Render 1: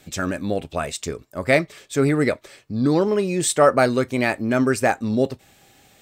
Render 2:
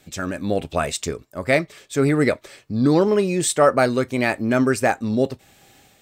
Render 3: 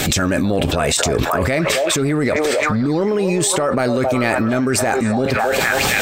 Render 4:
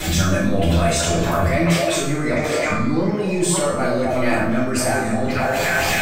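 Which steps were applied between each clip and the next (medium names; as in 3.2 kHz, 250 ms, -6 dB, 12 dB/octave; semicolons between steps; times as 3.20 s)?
level rider gain up to 7.5 dB; trim -3 dB
transient shaper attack -11 dB, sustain +2 dB; repeats whose band climbs or falls 266 ms, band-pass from 660 Hz, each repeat 0.7 oct, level -7 dB; level flattener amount 100%; trim -3 dB
feedback comb 170 Hz, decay 0.73 s, harmonics all, mix 80%; reverberation RT60 0.75 s, pre-delay 3 ms, DRR -10 dB; trim -3.5 dB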